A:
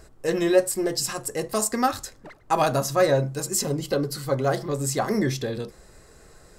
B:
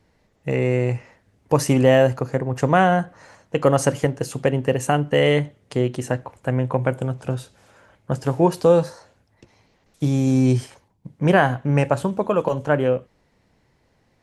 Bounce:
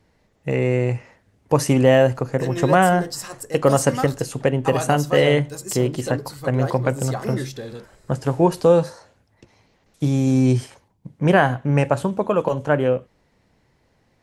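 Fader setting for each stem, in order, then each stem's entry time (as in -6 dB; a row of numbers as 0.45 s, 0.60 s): -4.5 dB, +0.5 dB; 2.15 s, 0.00 s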